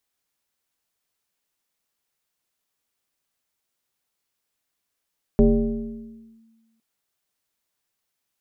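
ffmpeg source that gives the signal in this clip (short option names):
-f lavfi -i "aevalsrc='0.316*pow(10,-3*t/1.47)*sin(2*PI*225*t+1.3*clip(1-t/1.04,0,1)*sin(2*PI*0.81*225*t))':d=1.41:s=44100"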